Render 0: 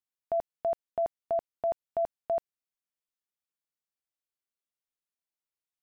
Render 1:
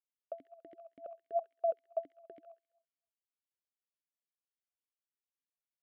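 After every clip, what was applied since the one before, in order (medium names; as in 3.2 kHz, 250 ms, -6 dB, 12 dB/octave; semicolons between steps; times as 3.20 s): feedback echo behind a high-pass 67 ms, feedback 52%, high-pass 1.5 kHz, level -5.5 dB; talking filter a-i 3.6 Hz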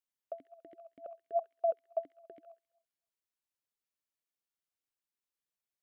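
dynamic bell 1 kHz, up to +4 dB, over -49 dBFS, Q 1.7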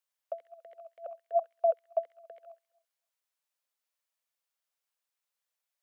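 elliptic high-pass 500 Hz; trim +5.5 dB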